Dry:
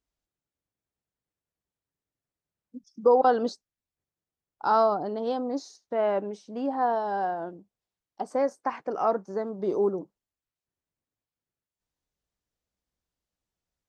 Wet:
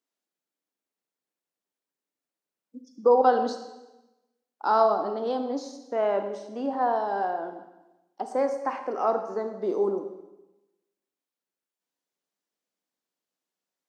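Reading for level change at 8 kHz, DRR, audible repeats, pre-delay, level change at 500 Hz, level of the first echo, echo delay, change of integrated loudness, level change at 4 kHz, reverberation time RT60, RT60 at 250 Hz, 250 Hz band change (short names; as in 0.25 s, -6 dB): n/a, 7.0 dB, none, 28 ms, +1.0 dB, none, none, +1.0 dB, +1.0 dB, 1.0 s, 1.1 s, -0.5 dB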